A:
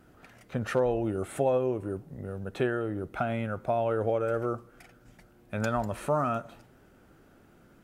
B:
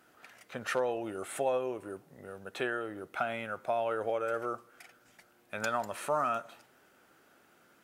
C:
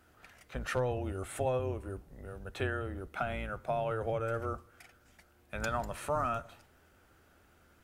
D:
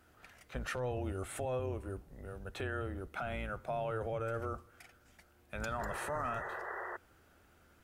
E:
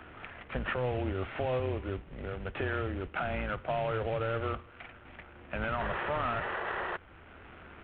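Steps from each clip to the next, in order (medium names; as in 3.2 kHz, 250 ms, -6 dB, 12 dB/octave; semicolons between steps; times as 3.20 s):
high-pass 1.1 kHz 6 dB/octave; trim +2.5 dB
octave divider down 2 oct, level 0 dB; bass shelf 130 Hz +9 dB; trim -2.5 dB
painted sound noise, 5.78–6.97 s, 340–2000 Hz -41 dBFS; peak limiter -27 dBFS, peak gain reduction 8 dB; trim -1 dB
CVSD coder 16 kbps; three bands compressed up and down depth 40%; trim +5.5 dB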